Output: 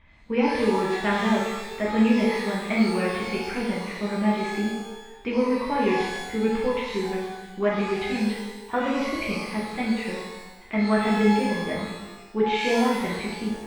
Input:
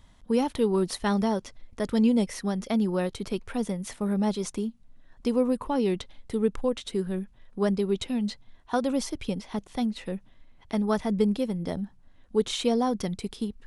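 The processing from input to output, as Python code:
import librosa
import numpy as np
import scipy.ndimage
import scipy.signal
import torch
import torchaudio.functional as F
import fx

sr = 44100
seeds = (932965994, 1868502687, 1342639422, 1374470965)

y = fx.lowpass_res(x, sr, hz=2300.0, q=5.4)
y = fx.rev_shimmer(y, sr, seeds[0], rt60_s=1.0, semitones=12, shimmer_db=-8, drr_db=-5.0)
y = F.gain(torch.from_numpy(y), -4.0).numpy()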